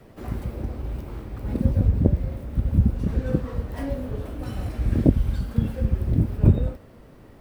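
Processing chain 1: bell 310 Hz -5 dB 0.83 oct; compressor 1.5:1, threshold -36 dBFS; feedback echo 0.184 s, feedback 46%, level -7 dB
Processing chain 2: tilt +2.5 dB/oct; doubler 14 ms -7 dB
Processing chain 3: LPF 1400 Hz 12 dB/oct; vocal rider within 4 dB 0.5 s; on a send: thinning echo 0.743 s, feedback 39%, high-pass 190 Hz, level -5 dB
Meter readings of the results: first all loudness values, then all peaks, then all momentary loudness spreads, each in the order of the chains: -31.5, -31.5, -26.0 LUFS; -12.0, -7.5, -4.5 dBFS; 9, 12, 7 LU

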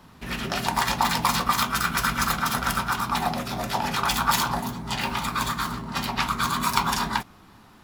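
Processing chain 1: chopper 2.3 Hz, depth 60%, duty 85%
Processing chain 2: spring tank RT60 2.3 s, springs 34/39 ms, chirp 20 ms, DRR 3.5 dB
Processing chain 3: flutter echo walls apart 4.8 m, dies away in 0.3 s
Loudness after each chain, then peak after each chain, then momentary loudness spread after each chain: -25.5, -24.0, -23.5 LUFS; -3.5, -4.0, -3.5 dBFS; 7, 6, 7 LU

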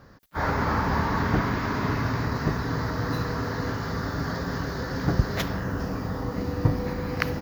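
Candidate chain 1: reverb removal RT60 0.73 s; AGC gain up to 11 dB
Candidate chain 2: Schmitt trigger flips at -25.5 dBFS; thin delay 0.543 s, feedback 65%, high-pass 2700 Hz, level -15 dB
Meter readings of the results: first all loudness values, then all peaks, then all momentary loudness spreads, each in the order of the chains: -20.5, -29.0 LUFS; -1.0, -21.0 dBFS; 7, 2 LU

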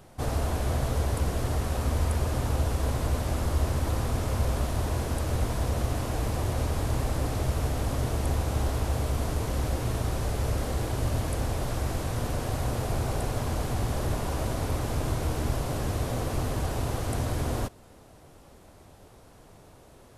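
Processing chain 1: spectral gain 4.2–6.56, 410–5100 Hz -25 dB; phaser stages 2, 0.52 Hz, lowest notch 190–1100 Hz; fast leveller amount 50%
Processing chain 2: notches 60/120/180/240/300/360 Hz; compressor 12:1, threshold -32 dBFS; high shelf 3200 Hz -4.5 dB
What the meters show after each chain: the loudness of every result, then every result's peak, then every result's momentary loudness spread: -27.5, -38.0 LUFS; -14.0, -23.5 dBFS; 13, 16 LU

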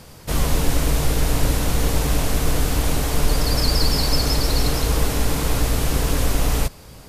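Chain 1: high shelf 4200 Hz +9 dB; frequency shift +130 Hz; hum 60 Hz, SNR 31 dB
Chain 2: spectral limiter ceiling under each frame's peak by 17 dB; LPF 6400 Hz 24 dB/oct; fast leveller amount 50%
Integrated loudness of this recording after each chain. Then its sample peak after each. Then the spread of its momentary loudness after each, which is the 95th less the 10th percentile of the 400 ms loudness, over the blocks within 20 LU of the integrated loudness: -16.5, -15.0 LUFS; -3.0, -1.5 dBFS; 3, 2 LU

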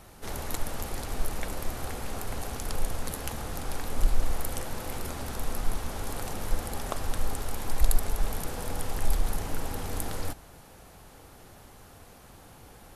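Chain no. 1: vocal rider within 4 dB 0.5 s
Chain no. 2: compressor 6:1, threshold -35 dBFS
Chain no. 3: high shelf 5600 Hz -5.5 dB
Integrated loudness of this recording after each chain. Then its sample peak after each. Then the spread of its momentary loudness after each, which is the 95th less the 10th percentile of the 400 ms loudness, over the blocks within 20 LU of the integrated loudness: -35.0, -44.5, -36.0 LUFS; -10.5, -18.5, -8.0 dBFS; 16, 10, 20 LU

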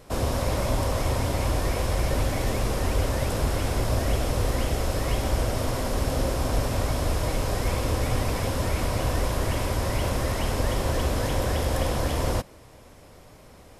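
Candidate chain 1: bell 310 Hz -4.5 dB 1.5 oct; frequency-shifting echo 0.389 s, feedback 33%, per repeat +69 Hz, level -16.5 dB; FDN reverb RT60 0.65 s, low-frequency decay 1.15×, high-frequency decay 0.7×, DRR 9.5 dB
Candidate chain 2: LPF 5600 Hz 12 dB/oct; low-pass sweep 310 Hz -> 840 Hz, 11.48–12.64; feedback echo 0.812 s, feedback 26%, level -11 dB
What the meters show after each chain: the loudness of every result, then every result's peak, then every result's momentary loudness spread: -27.0, -26.5 LUFS; -12.0, -10.5 dBFS; 2, 2 LU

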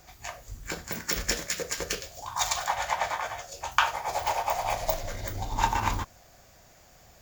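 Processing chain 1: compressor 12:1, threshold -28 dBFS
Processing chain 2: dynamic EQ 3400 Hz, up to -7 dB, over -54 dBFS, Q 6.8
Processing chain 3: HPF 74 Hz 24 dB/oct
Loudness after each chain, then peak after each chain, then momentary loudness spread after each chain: -34.5, -30.0, -30.0 LUFS; -8.5, -6.0, -5.0 dBFS; 6, 11, 11 LU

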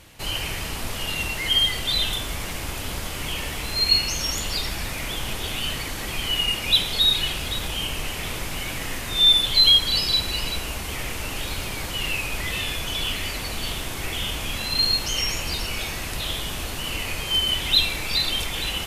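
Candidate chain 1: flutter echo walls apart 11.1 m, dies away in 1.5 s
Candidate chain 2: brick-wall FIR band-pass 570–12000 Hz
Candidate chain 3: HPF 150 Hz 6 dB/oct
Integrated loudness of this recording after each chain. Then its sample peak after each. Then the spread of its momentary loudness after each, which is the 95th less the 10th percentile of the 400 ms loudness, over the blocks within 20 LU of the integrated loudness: -19.0, -23.0, -23.0 LUFS; -2.0, -6.5, -6.0 dBFS; 11, 13, 13 LU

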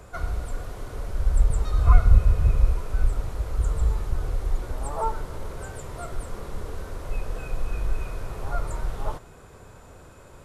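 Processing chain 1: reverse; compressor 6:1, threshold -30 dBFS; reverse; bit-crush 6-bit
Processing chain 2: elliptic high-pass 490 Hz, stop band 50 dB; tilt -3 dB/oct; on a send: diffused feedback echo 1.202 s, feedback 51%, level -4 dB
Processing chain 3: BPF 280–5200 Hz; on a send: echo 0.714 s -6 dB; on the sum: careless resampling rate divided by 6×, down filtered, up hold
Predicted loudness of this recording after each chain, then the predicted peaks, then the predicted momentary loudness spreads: -36.5, -38.0, -38.0 LUFS; -24.0, -17.0, -15.5 dBFS; 2, 9, 10 LU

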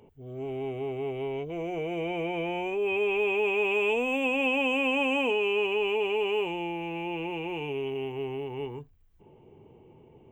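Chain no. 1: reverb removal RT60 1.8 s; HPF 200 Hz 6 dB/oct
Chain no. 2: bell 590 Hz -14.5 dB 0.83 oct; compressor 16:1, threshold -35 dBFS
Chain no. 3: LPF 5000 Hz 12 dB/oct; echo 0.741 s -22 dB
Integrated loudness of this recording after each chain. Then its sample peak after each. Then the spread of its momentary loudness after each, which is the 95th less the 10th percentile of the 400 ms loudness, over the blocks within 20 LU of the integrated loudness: -32.0, -38.5, -29.0 LUFS; -19.0, -28.5, -16.5 dBFS; 12, 9, 9 LU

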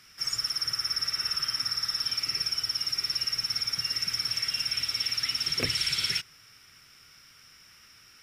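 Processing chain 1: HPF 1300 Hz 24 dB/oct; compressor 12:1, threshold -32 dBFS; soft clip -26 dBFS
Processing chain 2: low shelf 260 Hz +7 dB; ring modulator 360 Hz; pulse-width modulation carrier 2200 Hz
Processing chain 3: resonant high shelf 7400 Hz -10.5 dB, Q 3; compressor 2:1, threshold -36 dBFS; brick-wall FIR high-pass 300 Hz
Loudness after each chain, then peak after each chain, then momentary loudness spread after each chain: -35.0, -34.0, -29.5 LUFS; -27.0, -19.5, -18.5 dBFS; 18, 3, 18 LU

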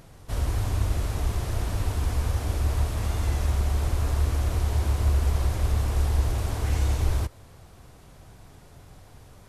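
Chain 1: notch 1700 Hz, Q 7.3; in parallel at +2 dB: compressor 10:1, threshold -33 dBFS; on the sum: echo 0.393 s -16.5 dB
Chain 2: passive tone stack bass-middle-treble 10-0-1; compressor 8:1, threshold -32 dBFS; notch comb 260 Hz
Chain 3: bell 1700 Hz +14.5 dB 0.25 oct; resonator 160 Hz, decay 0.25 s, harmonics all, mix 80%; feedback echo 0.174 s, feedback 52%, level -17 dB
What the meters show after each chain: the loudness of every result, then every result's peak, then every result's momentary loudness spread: -24.5, -40.5, -37.5 LUFS; -10.0, -26.5, -22.5 dBFS; 21, 3, 3 LU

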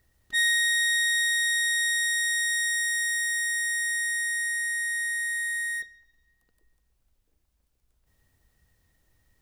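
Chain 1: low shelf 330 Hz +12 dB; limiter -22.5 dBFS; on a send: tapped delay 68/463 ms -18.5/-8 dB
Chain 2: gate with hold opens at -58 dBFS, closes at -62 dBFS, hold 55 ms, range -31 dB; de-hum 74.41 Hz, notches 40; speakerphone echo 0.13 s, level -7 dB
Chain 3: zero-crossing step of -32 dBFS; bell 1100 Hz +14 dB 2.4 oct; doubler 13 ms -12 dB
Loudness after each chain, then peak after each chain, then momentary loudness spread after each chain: -26.0, -25.0, -15.0 LUFS; -20.5, -15.5, -8.5 dBFS; 5, 5, 20 LU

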